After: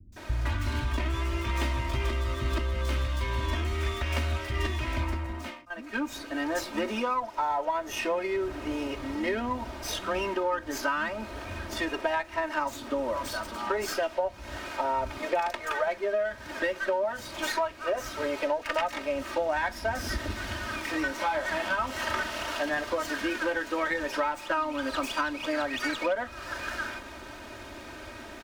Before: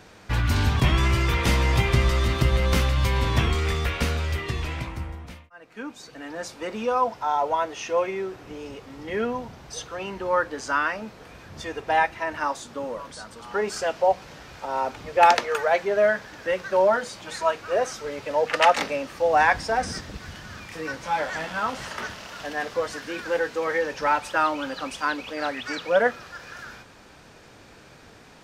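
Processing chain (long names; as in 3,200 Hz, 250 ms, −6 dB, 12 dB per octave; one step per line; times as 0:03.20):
noise gate with hold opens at −41 dBFS
comb filter 3.2 ms, depth 87%
downward compressor 16 to 1, threshold −30 dBFS, peak gain reduction 22.5 dB
three-band delay without the direct sound lows, highs, mids 120/160 ms, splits 190/5,200 Hz
windowed peak hold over 3 samples
level +5 dB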